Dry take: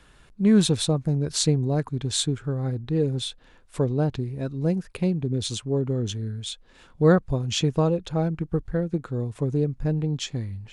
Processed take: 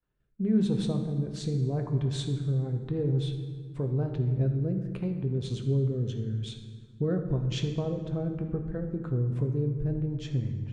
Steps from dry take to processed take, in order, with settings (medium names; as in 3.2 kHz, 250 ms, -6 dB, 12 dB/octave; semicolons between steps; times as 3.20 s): expander -40 dBFS; low-pass 1.3 kHz 6 dB/octave; compression 2.5:1, threshold -29 dBFS, peak gain reduction 11 dB; rotary cabinet horn 0.9 Hz, later 5.5 Hz, at 8.61 s; on a send: reverberation RT60 1.8 s, pre-delay 4 ms, DRR 4 dB